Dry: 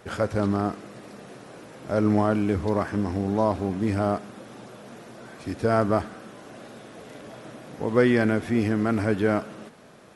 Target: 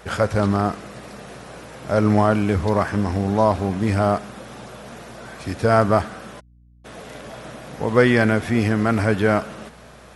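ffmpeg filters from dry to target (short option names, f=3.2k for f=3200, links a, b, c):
-filter_complex "[0:a]asplit=3[a][b][c];[a]afade=t=out:st=6.39:d=0.02[d];[b]acrusher=bits=3:mix=0:aa=0.5,afade=t=in:st=6.39:d=0.02,afade=t=out:st=6.84:d=0.02[e];[c]afade=t=in:st=6.84:d=0.02[f];[d][e][f]amix=inputs=3:normalize=0,aeval=exprs='val(0)+0.00141*(sin(2*PI*60*n/s)+sin(2*PI*2*60*n/s)/2+sin(2*PI*3*60*n/s)/3+sin(2*PI*4*60*n/s)/4+sin(2*PI*5*60*n/s)/5)':c=same,equalizer=f=310:w=1.2:g=-6.5,volume=7.5dB"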